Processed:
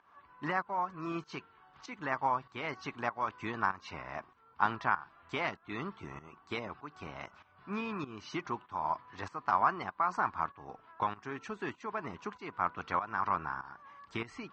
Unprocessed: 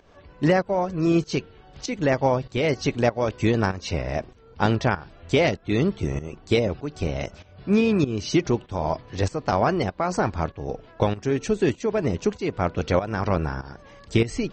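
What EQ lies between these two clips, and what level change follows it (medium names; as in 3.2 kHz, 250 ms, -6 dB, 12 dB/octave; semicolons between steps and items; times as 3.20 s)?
band-pass filter 460 Hz, Q 0.61; resonant low shelf 760 Hz -12.5 dB, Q 3; -2.0 dB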